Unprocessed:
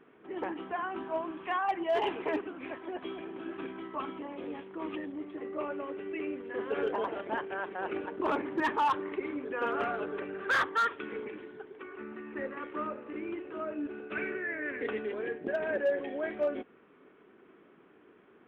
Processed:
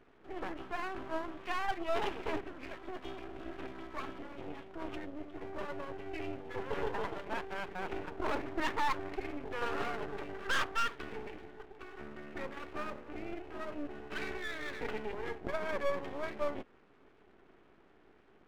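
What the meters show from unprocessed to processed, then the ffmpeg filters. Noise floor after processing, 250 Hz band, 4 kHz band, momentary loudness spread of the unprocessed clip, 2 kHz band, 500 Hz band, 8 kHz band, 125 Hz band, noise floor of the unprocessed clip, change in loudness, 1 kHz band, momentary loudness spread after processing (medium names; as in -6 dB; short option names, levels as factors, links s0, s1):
-63 dBFS, -5.5 dB, +1.0 dB, 11 LU, -4.0 dB, -5.5 dB, no reading, +4.0 dB, -60 dBFS, -5.0 dB, -5.0 dB, 11 LU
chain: -af "aeval=exprs='max(val(0),0)':c=same"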